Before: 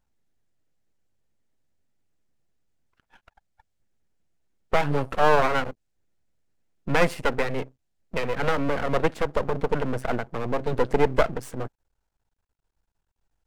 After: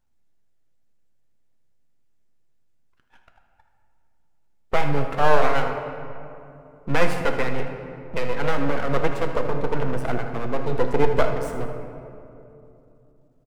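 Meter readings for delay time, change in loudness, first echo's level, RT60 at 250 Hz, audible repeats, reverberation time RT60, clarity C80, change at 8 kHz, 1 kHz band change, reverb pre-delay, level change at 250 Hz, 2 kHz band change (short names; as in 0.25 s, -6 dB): 79 ms, +0.5 dB, -13.0 dB, 3.7 s, 1, 2.8 s, 7.0 dB, 0.0 dB, +1.0 dB, 8 ms, +1.0 dB, +0.5 dB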